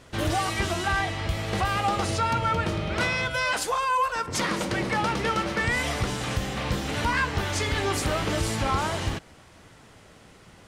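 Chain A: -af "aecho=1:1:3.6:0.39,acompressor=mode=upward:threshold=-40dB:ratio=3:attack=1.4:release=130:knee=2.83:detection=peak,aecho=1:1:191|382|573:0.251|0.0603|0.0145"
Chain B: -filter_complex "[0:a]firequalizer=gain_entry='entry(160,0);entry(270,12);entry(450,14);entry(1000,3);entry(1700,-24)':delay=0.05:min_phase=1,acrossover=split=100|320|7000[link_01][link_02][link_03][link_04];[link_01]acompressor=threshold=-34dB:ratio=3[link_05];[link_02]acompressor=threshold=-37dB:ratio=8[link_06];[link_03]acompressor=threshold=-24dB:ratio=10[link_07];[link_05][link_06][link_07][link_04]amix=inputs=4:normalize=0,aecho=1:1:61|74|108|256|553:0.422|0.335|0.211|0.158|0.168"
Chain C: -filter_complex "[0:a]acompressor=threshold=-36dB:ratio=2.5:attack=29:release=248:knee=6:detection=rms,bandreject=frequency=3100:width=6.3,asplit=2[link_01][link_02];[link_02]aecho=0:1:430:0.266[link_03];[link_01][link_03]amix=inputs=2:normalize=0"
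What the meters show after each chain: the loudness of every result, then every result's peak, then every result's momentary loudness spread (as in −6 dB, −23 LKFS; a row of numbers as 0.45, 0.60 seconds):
−25.5, −25.5, −34.5 LKFS; −13.0, −12.0, −22.0 dBFS; 4, 12, 12 LU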